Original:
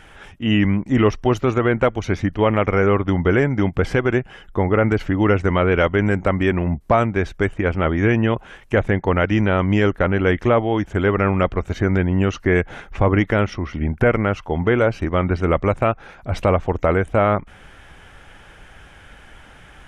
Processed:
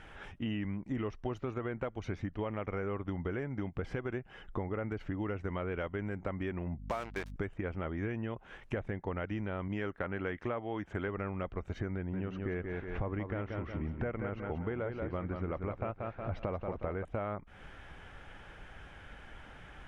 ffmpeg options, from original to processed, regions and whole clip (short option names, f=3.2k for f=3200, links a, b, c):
-filter_complex "[0:a]asettb=1/sr,asplit=3[a][b][c];[a]atrim=end=6.784[d];[b]atrim=start=6.78:end=7.36,asetpts=PTS-STARTPTS,afade=t=in:d=0.004:c=qsin,afade=t=out:st=0.576:d=0.004:c=qsin,aemphasis=mode=production:type=riaa,acrusher=bits=3:mix=0:aa=0.5,aeval=exprs='val(0)+0.0251*(sin(2*PI*50*n/s)+sin(2*PI*2*50*n/s)/2+sin(2*PI*3*50*n/s)/3+sin(2*PI*4*50*n/s)/4+sin(2*PI*5*50*n/s)/5)':c=same[e];[c]atrim=start=7.356[f];[d][e]acrossfade=d=0.004:c1=hsin:c2=qsin[g];[g][f]acrossfade=d=0.004:c1=qsin:c2=hsin,asettb=1/sr,asplit=3[h][i][j];[h]atrim=end=9.684[k];[i]atrim=start=9.68:end=11.08,asetpts=PTS-STARTPTS,afade=t=in:d=0.004:c=qsin,afade=t=out:st=1.396:d=0.004:c=qsin,highpass=f=97:p=1,adynamicequalizer=threshold=0.0251:dfrequency=1600:dqfactor=0.82:tfrequency=1600:tqfactor=0.82:attack=5:release=100:ratio=0.375:range=2:mode=boostabove:tftype=bell[l];[j]atrim=start=11.076[m];[k][l]acrossfade=d=0.004:c1=hsin:c2=qsin[n];[n][m]acrossfade=d=0.004:c1=qsin:c2=hsin,asettb=1/sr,asplit=3[o][p][q];[o]atrim=end=11.954[r];[p]atrim=start=11.95:end=17.05,asetpts=PTS-STARTPTS,afade=t=in:d=0.004:c=qsin,afade=t=out:st=5.096:d=0.004:c=qsin,lowpass=5.2k,highshelf=f=4k:g=-8,aecho=1:1:182|364|546|728:0.447|0.156|0.0547|0.0192,atrim=end_sample=224910[s];[q]atrim=start=17.046[t];[r][s]acrossfade=d=0.004:c1=hsin:c2=qsin[u];[u][t]acrossfade=d=0.004:c1=qsin:c2=hsin,aemphasis=mode=reproduction:type=50kf,acompressor=threshold=-28dB:ratio=6,volume=-6dB"